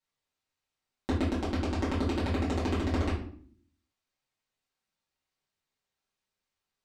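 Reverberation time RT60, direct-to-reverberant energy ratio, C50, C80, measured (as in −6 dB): 0.55 s, −10.0 dB, 5.0 dB, 9.5 dB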